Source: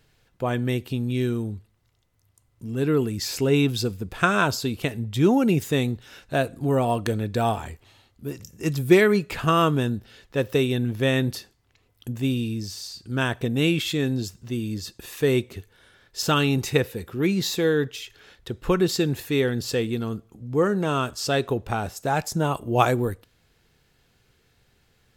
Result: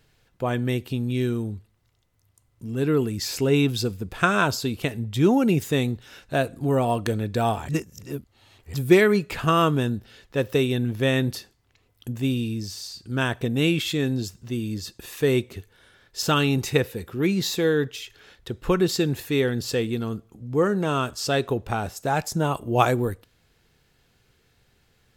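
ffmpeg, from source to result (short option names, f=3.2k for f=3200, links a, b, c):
-filter_complex "[0:a]asplit=3[a][b][c];[a]atrim=end=7.692[d];[b]atrim=start=7.688:end=8.742,asetpts=PTS-STARTPTS,areverse[e];[c]atrim=start=8.738[f];[d][e]acrossfade=d=0.004:c1=hsin:c2=hsin[g];[g][f]acrossfade=d=0.004:c1=hsin:c2=hsin"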